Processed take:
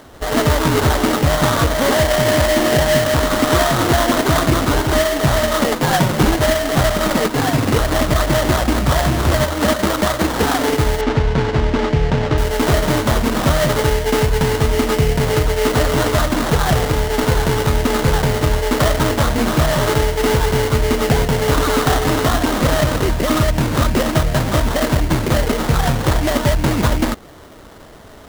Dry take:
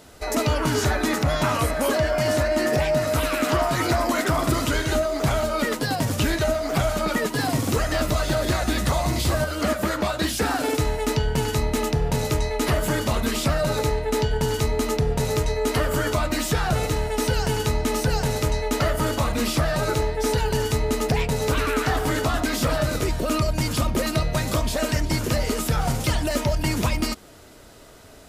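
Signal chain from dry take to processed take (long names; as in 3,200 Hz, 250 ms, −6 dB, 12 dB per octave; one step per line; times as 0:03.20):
0:05.82–0:06.30: comb filter 5.5 ms, depth 90%
sample-rate reduction 2,500 Hz, jitter 20%
0:11.01–0:12.38: high-frequency loss of the air 140 metres
level +7 dB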